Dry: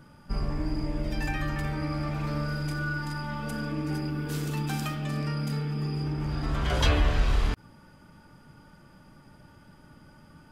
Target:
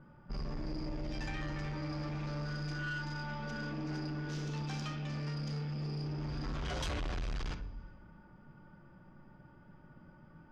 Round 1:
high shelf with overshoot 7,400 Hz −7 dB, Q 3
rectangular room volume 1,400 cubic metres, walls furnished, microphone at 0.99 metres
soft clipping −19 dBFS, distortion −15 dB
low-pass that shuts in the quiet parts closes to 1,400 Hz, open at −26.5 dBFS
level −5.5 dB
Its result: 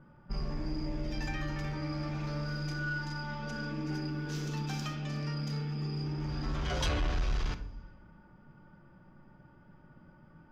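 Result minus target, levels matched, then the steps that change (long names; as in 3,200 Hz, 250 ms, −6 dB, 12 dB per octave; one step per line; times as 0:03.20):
soft clipping: distortion −8 dB
change: soft clipping −28.5 dBFS, distortion −7 dB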